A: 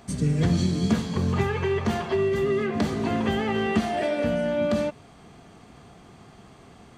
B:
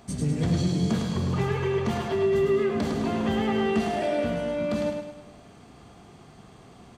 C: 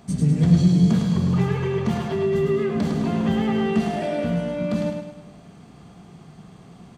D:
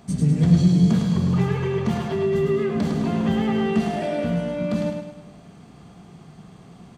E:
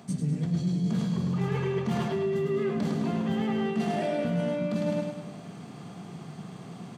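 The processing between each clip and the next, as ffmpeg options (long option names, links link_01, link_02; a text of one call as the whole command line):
ffmpeg -i in.wav -filter_complex "[0:a]equalizer=frequency=1800:width=1.5:gain=-2.5,asoftclip=type=tanh:threshold=-16dB,asplit=2[link_01][link_02];[link_02]aecho=0:1:105|210|315|420|525|630:0.562|0.253|0.114|0.0512|0.0231|0.0104[link_03];[link_01][link_03]amix=inputs=2:normalize=0,volume=-1.5dB" out.wav
ffmpeg -i in.wav -af "equalizer=frequency=170:width_type=o:width=0.62:gain=11" out.wav
ffmpeg -i in.wav -af anull out.wav
ffmpeg -i in.wav -af "highpass=frequency=110:width=0.5412,highpass=frequency=110:width=1.3066,areverse,acompressor=threshold=-28dB:ratio=12,areverse,volume=3.5dB" out.wav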